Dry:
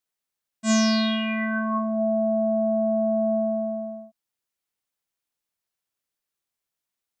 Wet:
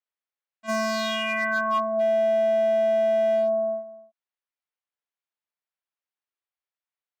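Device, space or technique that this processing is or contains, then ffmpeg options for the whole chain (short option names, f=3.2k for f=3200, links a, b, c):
walkie-talkie: -af "highpass=540,lowpass=2.9k,asoftclip=type=hard:threshold=-24dB,agate=range=-10dB:threshold=-33dB:ratio=16:detection=peak,volume=5.5dB"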